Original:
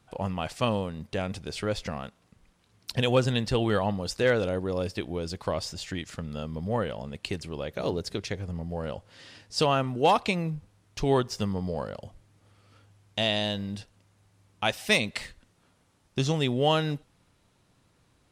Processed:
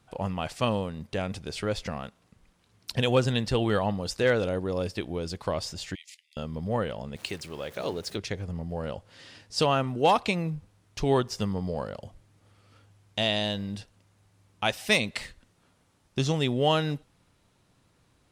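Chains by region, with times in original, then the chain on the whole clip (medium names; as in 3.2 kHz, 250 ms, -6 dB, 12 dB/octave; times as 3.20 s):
5.95–6.37 s: steep high-pass 2 kHz 96 dB/octave + level held to a coarse grid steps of 12 dB
7.16–8.16 s: jump at every zero crossing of -44 dBFS + high-pass 52 Hz + bass shelf 340 Hz -8 dB
whole clip: none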